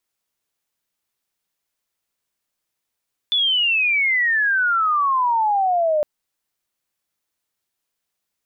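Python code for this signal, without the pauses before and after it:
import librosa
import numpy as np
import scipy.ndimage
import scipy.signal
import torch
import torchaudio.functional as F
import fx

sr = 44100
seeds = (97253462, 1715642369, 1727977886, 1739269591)

y = fx.chirp(sr, length_s=2.71, from_hz=3500.0, to_hz=590.0, law='logarithmic', from_db=-15.5, to_db=-15.5)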